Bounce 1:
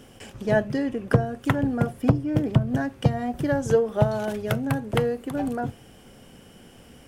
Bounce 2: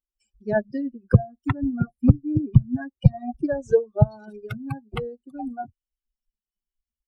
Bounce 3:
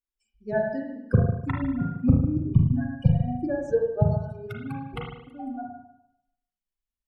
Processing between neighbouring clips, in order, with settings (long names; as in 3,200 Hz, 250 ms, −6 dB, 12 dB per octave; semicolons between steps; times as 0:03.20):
spectral dynamics exaggerated over time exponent 3; RIAA equalisation playback; boost into a limiter +2.5 dB; level −1 dB
convolution reverb RT60 0.80 s, pre-delay 36 ms, DRR −1 dB; level −5.5 dB